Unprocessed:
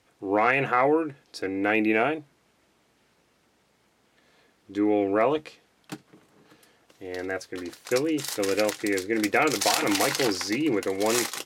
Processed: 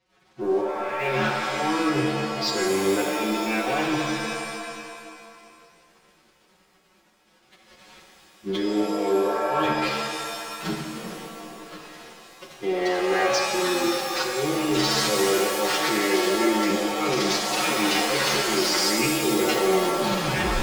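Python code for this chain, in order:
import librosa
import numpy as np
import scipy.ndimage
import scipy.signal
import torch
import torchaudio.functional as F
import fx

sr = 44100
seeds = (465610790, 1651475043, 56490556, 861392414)

y = fx.tape_stop_end(x, sr, length_s=0.5)
y = scipy.signal.sosfilt(scipy.signal.butter(4, 5700.0, 'lowpass', fs=sr, output='sos'), y)
y = y + 0.96 * np.pad(y, (int(5.4 * sr / 1000.0), 0))[:len(y)]
y = fx.over_compress(y, sr, threshold_db=-31.0, ratio=-1.0)
y = fx.leveller(y, sr, passes=3)
y = fx.level_steps(y, sr, step_db=12)
y = fx.stretch_vocoder(y, sr, factor=1.8)
y = fx.transient(y, sr, attack_db=-4, sustain_db=2)
y = fx.rev_shimmer(y, sr, seeds[0], rt60_s=2.1, semitones=7, shimmer_db=-2, drr_db=2.0)
y = F.gain(torch.from_numpy(y), -1.5).numpy()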